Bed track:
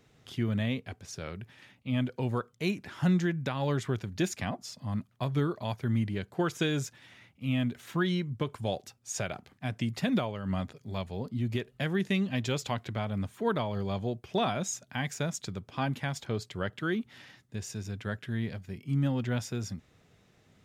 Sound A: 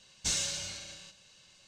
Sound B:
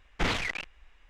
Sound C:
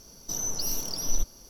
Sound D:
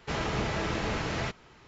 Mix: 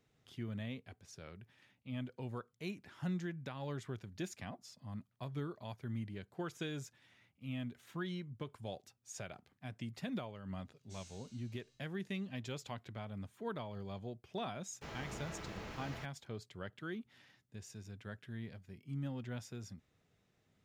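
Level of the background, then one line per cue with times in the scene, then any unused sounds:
bed track −12.5 dB
0:10.65: mix in A −10 dB + resonators tuned to a chord G#2 major, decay 0.54 s
0:14.74: mix in D −16 dB + centre clipping without the shift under −44.5 dBFS
not used: B, C

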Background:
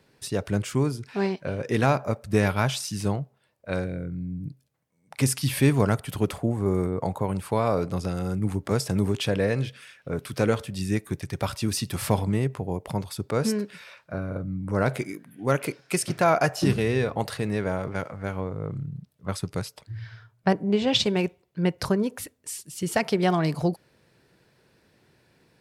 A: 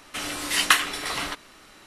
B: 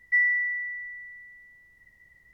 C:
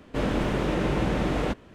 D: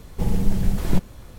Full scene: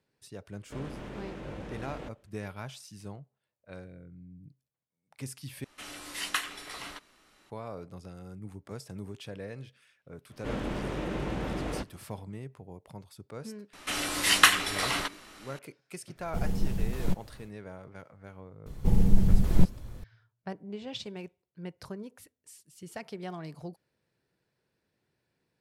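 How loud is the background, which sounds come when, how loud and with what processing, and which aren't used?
background −17 dB
0:00.56: mix in C −13.5 dB + output level in coarse steps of 14 dB
0:05.64: overwrite with A −12.5 dB
0:10.30: mix in C −8 dB
0:13.73: mix in A −0.5 dB
0:16.15: mix in D −9 dB, fades 0.10 s
0:18.66: mix in D −7.5 dB + low-shelf EQ 350 Hz +7.5 dB
not used: B

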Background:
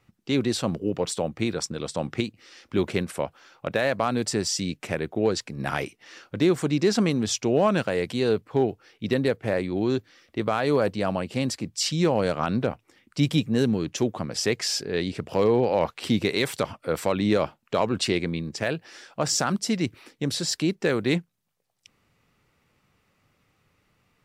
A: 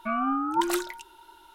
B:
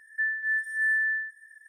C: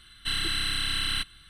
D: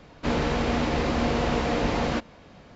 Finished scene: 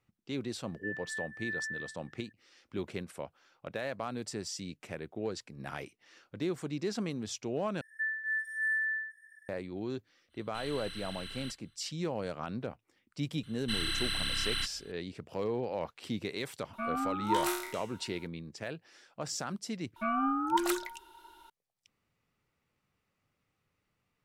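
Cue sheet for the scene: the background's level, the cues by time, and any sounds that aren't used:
background −13 dB
0:00.65: mix in B −11.5 dB + Bessel low-pass filter 2,600 Hz
0:07.81: overwrite with B −6 dB
0:10.29: mix in C −16.5 dB, fades 0.05 s
0:13.43: mix in C −5 dB
0:16.73: mix in A −7.5 dB + peak hold with a decay on every bin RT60 0.65 s
0:19.96: overwrite with A −3.5 dB
not used: D

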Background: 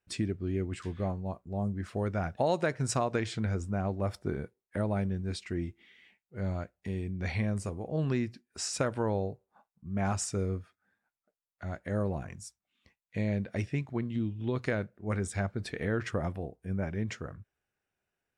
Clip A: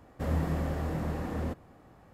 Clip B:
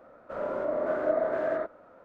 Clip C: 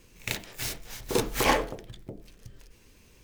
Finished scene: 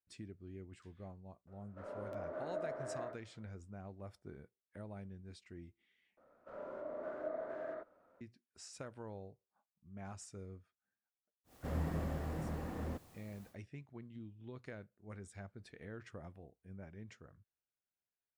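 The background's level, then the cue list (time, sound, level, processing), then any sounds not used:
background −18 dB
0:01.47: mix in B −15 dB + regular buffer underruns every 1.00 s repeat
0:06.17: overwrite with B −15 dB
0:11.44: mix in A −8 dB, fades 0.10 s + bit-depth reduction 10 bits, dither triangular
not used: C

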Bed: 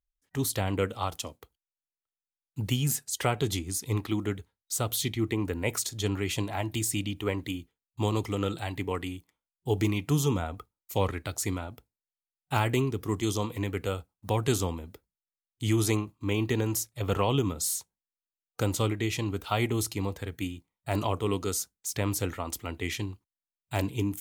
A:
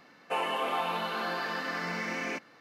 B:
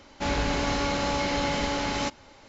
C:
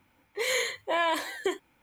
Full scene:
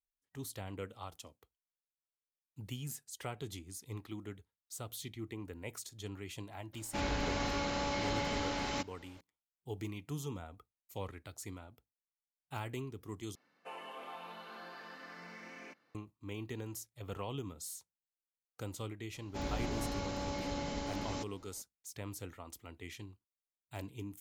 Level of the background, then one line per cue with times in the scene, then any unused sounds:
bed −15 dB
0:06.73: mix in B −8.5 dB
0:13.35: overwrite with A −16.5 dB
0:19.14: mix in B −9 dB + parametric band 2,000 Hz −7.5 dB 2.8 octaves
not used: C

